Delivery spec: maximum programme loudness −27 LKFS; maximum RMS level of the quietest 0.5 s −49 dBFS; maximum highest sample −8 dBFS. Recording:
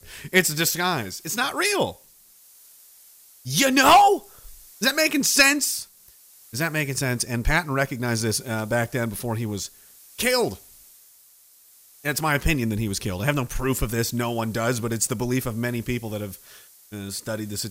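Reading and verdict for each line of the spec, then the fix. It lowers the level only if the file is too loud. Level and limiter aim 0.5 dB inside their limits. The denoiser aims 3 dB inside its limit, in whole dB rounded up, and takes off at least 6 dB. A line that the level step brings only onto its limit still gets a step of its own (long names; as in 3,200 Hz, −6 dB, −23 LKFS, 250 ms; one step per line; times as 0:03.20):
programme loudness −22.5 LKFS: out of spec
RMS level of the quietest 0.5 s −54 dBFS: in spec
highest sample −5.0 dBFS: out of spec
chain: level −5 dB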